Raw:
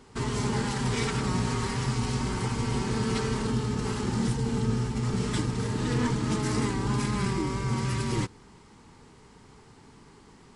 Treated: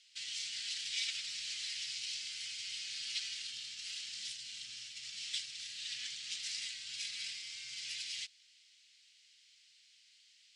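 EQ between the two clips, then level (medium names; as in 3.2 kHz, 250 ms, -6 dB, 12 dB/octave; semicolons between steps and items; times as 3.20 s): inverse Chebyshev high-pass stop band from 1.1 kHz, stop band 50 dB; low-pass 4.9 kHz 12 dB/octave; +3.5 dB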